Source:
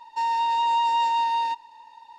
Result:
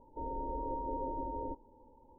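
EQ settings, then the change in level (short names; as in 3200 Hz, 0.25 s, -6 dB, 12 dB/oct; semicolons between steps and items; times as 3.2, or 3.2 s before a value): steep low-pass 550 Hz 36 dB/oct; tilt -2.5 dB/oct; +8.5 dB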